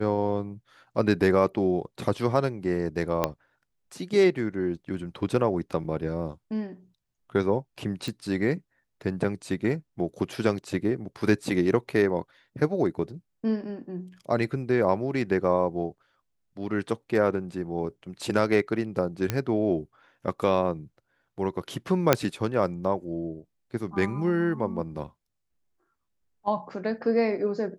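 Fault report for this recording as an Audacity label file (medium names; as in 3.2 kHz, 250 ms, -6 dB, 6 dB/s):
3.240000	3.240000	pop -9 dBFS
5.840000	5.850000	dropout 5.5 ms
8.080000	8.080000	pop
19.300000	19.300000	pop -11 dBFS
22.130000	22.130000	pop -3 dBFS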